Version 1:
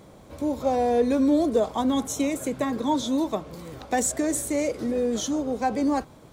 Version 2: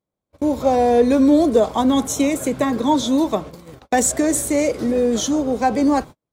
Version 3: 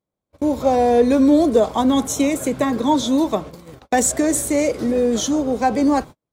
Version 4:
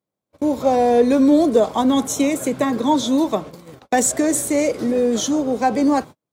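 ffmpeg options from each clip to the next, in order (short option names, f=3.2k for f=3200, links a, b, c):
-af "agate=range=-43dB:threshold=-37dB:ratio=16:detection=peak,volume=7dB"
-af anull
-af "highpass=110"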